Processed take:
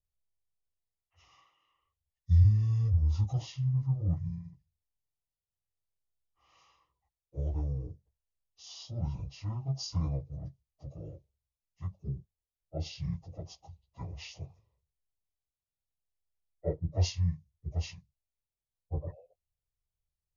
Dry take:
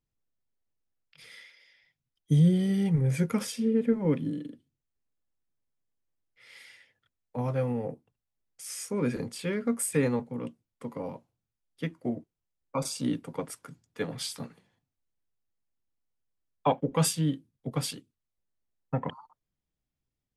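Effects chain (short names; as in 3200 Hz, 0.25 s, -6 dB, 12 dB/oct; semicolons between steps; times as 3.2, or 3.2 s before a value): pitch shift by moving bins -9.5 st; low shelf 290 Hz +8 dB; fixed phaser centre 630 Hz, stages 4; gain -5.5 dB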